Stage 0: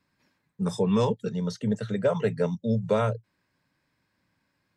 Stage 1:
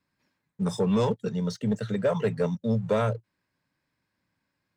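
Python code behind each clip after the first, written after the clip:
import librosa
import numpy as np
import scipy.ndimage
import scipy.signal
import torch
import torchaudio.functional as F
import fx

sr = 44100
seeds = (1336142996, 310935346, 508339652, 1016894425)

y = fx.leveller(x, sr, passes=1)
y = F.gain(torch.from_numpy(y), -3.0).numpy()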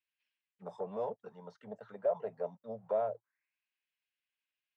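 y = fx.auto_wah(x, sr, base_hz=670.0, top_hz=2900.0, q=5.3, full_db=-23.5, direction='down')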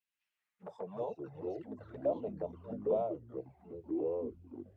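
y = fx.echo_pitch(x, sr, ms=119, semitones=-5, count=3, db_per_echo=-3.0)
y = fx.env_flanger(y, sr, rest_ms=9.9, full_db=-33.0)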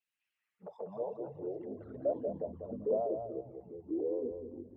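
y = fx.envelope_sharpen(x, sr, power=1.5)
y = fx.echo_feedback(y, sr, ms=194, feedback_pct=26, wet_db=-7.0)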